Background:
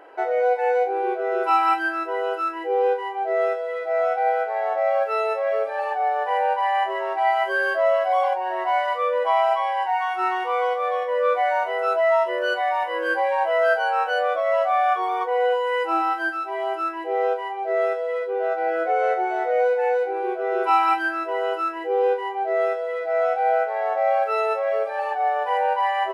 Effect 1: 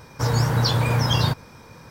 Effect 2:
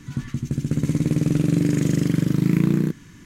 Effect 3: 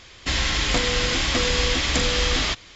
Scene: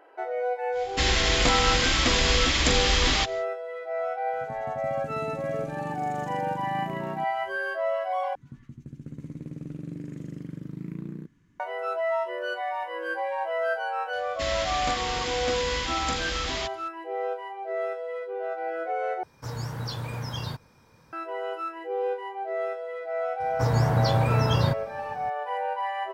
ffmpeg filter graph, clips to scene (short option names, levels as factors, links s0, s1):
-filter_complex "[3:a]asplit=2[s0][s1];[2:a]asplit=2[s2][s3];[1:a]asplit=2[s4][s5];[0:a]volume=0.398[s6];[s3]highshelf=f=2700:g=-11.5[s7];[s1]highpass=41[s8];[s5]highshelf=f=2200:g=-8.5[s9];[s6]asplit=3[s10][s11][s12];[s10]atrim=end=8.354[s13];[s7]atrim=end=3.25,asetpts=PTS-STARTPTS,volume=0.133[s14];[s11]atrim=start=11.596:end=19.234[s15];[s4]atrim=end=1.9,asetpts=PTS-STARTPTS,volume=0.224[s16];[s12]atrim=start=21.126[s17];[s0]atrim=end=2.75,asetpts=PTS-STARTPTS,volume=0.944,afade=t=in:d=0.1,afade=t=out:st=2.65:d=0.1,adelay=710[s18];[s2]atrim=end=3.25,asetpts=PTS-STARTPTS,volume=0.133,afade=t=in:d=0.004:c=hsin,afade=t=out:st=3.246:d=0.004:c=hsin,adelay=190953S[s19];[s8]atrim=end=2.75,asetpts=PTS-STARTPTS,volume=0.376,afade=t=in:d=0.004:c=hsin,afade=t=out:st=2.746:d=0.004:c=hsin,adelay=14130[s20];[s9]atrim=end=1.9,asetpts=PTS-STARTPTS,volume=0.794,afade=t=in:d=0.004:c=hsin,afade=t=out:st=1.896:d=0.004:c=hsin,adelay=1031940S[s21];[s13][s14]acrossfade=d=0.004:c1=hsin:c2=hsin[s22];[s22][s15]acrossfade=d=0.004:c1=hsin:c2=hsin[s23];[s23][s16]acrossfade=d=0.004:c1=hsin:c2=hsin[s24];[s24][s17]acrossfade=d=0.004:c1=hsin:c2=hsin[s25];[s25][s18][s19][s20][s21]amix=inputs=5:normalize=0"